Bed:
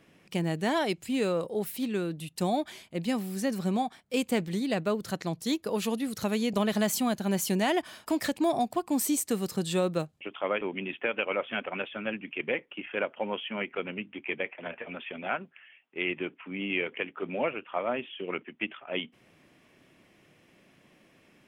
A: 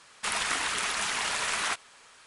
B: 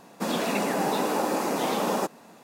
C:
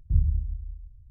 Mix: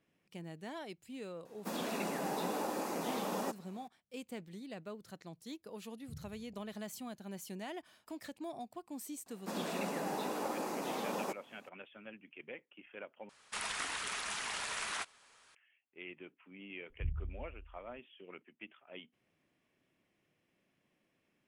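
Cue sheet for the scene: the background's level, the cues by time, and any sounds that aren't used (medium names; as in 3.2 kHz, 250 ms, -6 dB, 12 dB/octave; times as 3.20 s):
bed -17.5 dB
1.45 s: add B -11.5 dB + treble shelf 9.3 kHz +3 dB
5.98 s: add C -13 dB + high-pass 130 Hz 24 dB/octave
9.26 s: add B -12 dB
13.29 s: replace with A -9.5 dB
16.90 s: add C -15.5 dB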